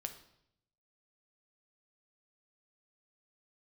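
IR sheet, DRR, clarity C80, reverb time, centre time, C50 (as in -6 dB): 5.5 dB, 14.0 dB, 0.75 s, 11 ms, 11.0 dB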